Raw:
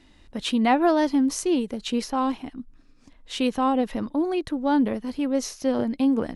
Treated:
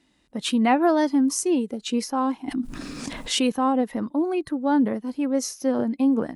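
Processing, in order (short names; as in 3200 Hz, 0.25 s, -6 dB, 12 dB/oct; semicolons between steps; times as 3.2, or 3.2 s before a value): bell 9100 Hz +6.5 dB 1 oct; spectral noise reduction 8 dB; HPF 45 Hz 12 dB/oct; resonant low shelf 120 Hz -6 dB, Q 1.5; 2.48–3.52 fast leveller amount 70%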